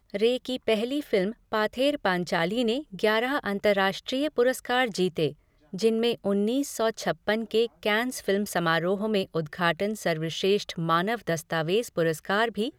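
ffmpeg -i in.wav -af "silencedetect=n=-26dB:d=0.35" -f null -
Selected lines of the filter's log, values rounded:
silence_start: 5.28
silence_end: 5.74 | silence_duration: 0.46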